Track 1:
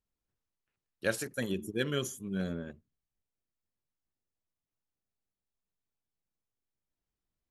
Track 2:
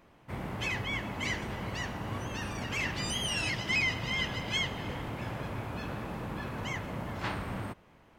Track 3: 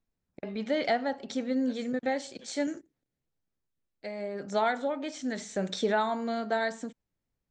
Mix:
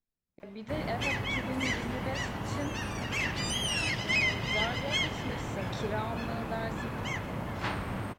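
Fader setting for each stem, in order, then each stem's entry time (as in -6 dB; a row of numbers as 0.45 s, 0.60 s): -19.5 dB, +1.5 dB, -8.5 dB; 0.40 s, 0.40 s, 0.00 s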